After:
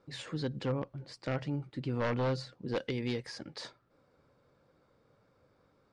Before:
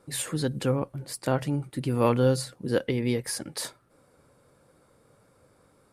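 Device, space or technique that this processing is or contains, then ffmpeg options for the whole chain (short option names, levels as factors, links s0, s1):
synthesiser wavefolder: -filter_complex "[0:a]asettb=1/sr,asplit=3[s0][s1][s2];[s0]atrim=end=2.754[s3];[s1]atrim=start=2.75:end=3.27,asetpts=PTS-STARTPTS,afade=t=in:d=0.004:c=qsin,afade=t=out:st=0.516:d=0.004:c=qsin,aemphasis=mode=production:type=75fm[s4];[s2]atrim=start=3.266[s5];[s3][s4]acrossfade=d=0.004:c1=hsin:c2=qsin[s6];[s6][s5]acrossfade=d=0.004:c1=qsin:c2=hsin,aeval=exprs='0.126*(abs(mod(val(0)/0.126+3,4)-2)-1)':c=same,lowpass=f=5500:w=0.5412,lowpass=f=5500:w=1.3066,volume=0.447"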